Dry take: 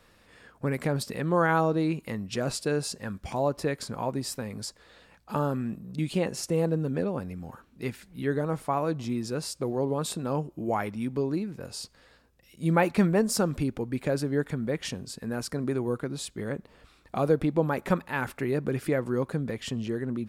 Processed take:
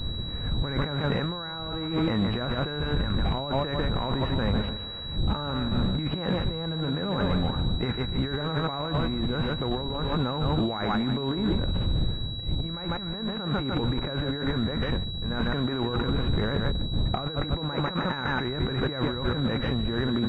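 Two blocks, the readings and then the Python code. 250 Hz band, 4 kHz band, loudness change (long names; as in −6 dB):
+1.0 dB, +10.5 dB, +1.0 dB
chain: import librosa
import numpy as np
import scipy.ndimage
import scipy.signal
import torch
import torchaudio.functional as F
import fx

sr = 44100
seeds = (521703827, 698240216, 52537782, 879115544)

p1 = fx.envelope_flatten(x, sr, power=0.6)
p2 = fx.dmg_wind(p1, sr, seeds[0], corner_hz=110.0, level_db=-36.0)
p3 = fx.dynamic_eq(p2, sr, hz=1500.0, q=1.3, threshold_db=-44.0, ratio=4.0, max_db=6)
p4 = p3 + fx.echo_feedback(p3, sr, ms=148, feedback_pct=35, wet_db=-11, dry=0)
p5 = fx.over_compress(p4, sr, threshold_db=-34.0, ratio=-1.0)
p6 = fx.air_absorb(p5, sr, metres=270.0)
p7 = 10.0 ** (-27.0 / 20.0) * (np.abs((p6 / 10.0 ** (-27.0 / 20.0) + 3.0) % 4.0 - 2.0) - 1.0)
p8 = p6 + F.gain(torch.from_numpy(p7), -6.0).numpy()
p9 = fx.pwm(p8, sr, carrier_hz=3900.0)
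y = F.gain(torch.from_numpy(p9), 3.5).numpy()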